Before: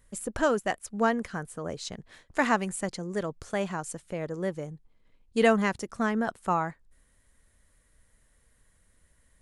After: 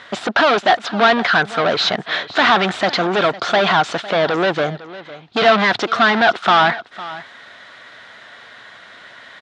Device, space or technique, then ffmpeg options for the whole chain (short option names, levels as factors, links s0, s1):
overdrive pedal into a guitar cabinet: -filter_complex "[0:a]asplit=2[s0][s1];[s1]highpass=f=720:p=1,volume=89.1,asoftclip=type=tanh:threshold=0.398[s2];[s0][s2]amix=inputs=2:normalize=0,lowpass=f=5900:p=1,volume=0.501,highpass=110,equalizer=f=110:t=q:w=4:g=8,equalizer=f=500:t=q:w=4:g=-5,equalizer=f=710:t=q:w=4:g=8,equalizer=f=1400:t=q:w=4:g=6,equalizer=f=3600:t=q:w=4:g=7,lowpass=f=4500:w=0.5412,lowpass=f=4500:w=1.3066,equalizer=f=72:w=0.49:g=-10.5,aecho=1:1:505:0.141"